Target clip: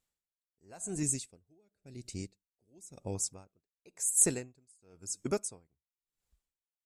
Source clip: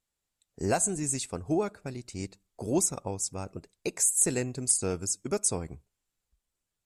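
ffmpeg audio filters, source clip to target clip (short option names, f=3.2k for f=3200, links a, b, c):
-filter_complex "[0:a]asettb=1/sr,asplit=3[a][b][c];[a]atrim=end=1.034[d];[b]atrim=start=1.03:end=3.15,asetpts=PTS-STARTPTS,afade=t=in:d=0.004:c=qsin,afade=t=out:st=2.116:d=0.004:c=qsin,equalizer=f=1.1k:w=1.2:g=-13.5[e];[c]atrim=start=3.146[f];[d][e]acrossfade=d=0.004:c1=hsin:c2=qsin[g];[g][f]acrossfade=d=0.004:c1=qsin:c2=hsin,aeval=exprs='val(0)*pow(10,-38*(0.5-0.5*cos(2*PI*0.95*n/s))/20)':c=same"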